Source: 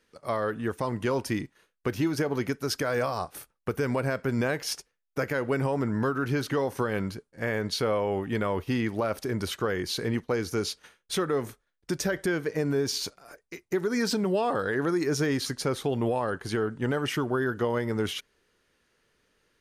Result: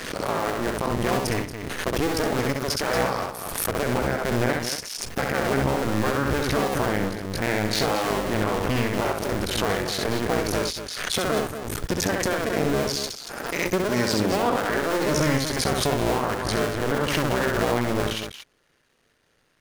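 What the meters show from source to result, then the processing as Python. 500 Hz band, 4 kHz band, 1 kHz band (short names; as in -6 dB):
+3.5 dB, +6.5 dB, +7.0 dB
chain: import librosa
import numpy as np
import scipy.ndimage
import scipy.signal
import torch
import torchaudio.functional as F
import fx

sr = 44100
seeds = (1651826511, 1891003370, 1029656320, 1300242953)

y = fx.cycle_switch(x, sr, every=2, mode='muted')
y = fx.echo_multitap(y, sr, ms=(66, 231), db=(-4.0, -9.5))
y = fx.pre_swell(y, sr, db_per_s=37.0)
y = F.gain(torch.from_numpy(y), 4.5).numpy()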